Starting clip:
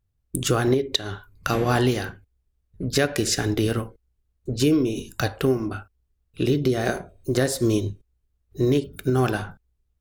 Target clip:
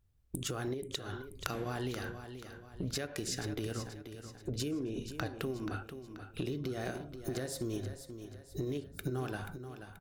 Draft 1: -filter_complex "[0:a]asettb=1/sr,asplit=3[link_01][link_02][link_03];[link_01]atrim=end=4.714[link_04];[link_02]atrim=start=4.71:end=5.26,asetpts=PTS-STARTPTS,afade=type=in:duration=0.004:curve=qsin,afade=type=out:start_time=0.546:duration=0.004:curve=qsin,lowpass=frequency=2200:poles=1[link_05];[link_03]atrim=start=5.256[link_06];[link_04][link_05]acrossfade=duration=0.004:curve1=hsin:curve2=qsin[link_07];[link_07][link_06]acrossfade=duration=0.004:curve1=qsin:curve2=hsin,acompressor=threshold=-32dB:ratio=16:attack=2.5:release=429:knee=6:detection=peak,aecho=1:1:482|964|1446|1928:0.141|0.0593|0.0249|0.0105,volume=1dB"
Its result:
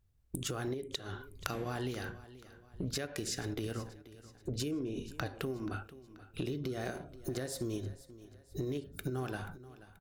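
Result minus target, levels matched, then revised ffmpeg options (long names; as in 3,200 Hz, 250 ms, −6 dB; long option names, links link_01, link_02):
echo-to-direct −7 dB
-filter_complex "[0:a]asettb=1/sr,asplit=3[link_01][link_02][link_03];[link_01]atrim=end=4.714[link_04];[link_02]atrim=start=4.71:end=5.26,asetpts=PTS-STARTPTS,afade=type=in:duration=0.004:curve=qsin,afade=type=out:start_time=0.546:duration=0.004:curve=qsin,lowpass=frequency=2200:poles=1[link_05];[link_03]atrim=start=5.256[link_06];[link_04][link_05]acrossfade=duration=0.004:curve1=hsin:curve2=qsin[link_07];[link_07][link_06]acrossfade=duration=0.004:curve1=qsin:curve2=hsin,acompressor=threshold=-32dB:ratio=16:attack=2.5:release=429:knee=6:detection=peak,aecho=1:1:482|964|1446|1928:0.316|0.133|0.0558|0.0234,volume=1dB"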